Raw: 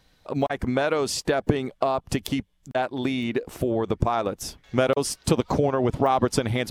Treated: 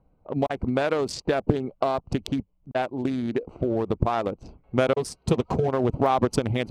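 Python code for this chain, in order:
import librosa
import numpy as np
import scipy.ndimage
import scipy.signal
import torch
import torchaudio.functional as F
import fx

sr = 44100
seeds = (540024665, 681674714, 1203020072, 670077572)

y = fx.wiener(x, sr, points=25)
y = fx.env_lowpass(y, sr, base_hz=1700.0, full_db=-21.0)
y = fx.notch_comb(y, sr, f0_hz=290.0, at=(4.96, 5.68))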